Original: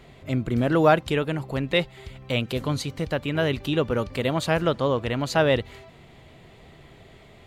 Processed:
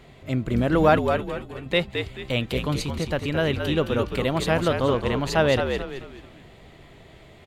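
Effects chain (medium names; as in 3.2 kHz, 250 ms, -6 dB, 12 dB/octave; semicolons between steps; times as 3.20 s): 1.00–1.66 s: feedback comb 380 Hz, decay 0.16 s, harmonics all, mix 80%; frequency-shifting echo 217 ms, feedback 36%, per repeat -63 Hz, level -6 dB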